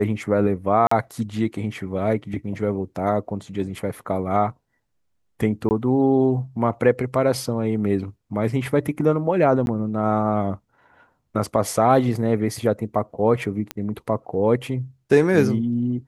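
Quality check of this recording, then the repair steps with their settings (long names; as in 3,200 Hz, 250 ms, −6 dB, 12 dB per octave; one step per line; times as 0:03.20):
0:00.87–0:00.91: drop-out 44 ms
0:05.69–0:05.71: drop-out 19 ms
0:09.66–0:09.67: drop-out 11 ms
0:13.71: click −11 dBFS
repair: click removal
repair the gap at 0:00.87, 44 ms
repair the gap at 0:05.69, 19 ms
repair the gap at 0:09.66, 11 ms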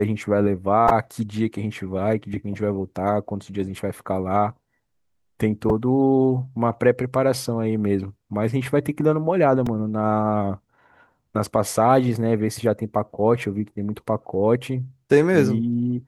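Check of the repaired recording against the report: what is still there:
none of them is left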